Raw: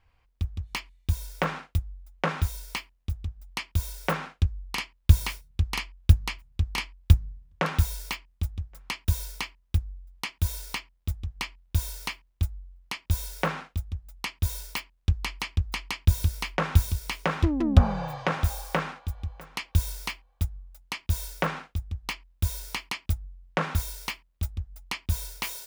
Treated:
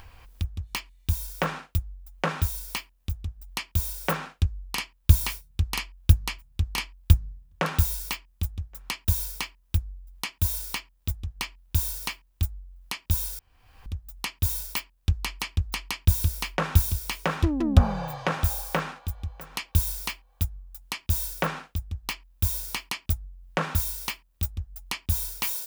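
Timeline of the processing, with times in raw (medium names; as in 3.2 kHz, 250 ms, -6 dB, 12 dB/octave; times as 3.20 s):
13.39–13.86 s: room tone
whole clip: treble shelf 8.6 kHz +10 dB; band-stop 2.1 kHz, Q 19; upward compressor, threshold -33 dBFS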